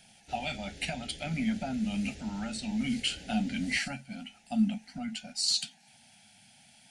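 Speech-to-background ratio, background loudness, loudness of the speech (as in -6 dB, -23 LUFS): 16.5 dB, -49.0 LUFS, -32.5 LUFS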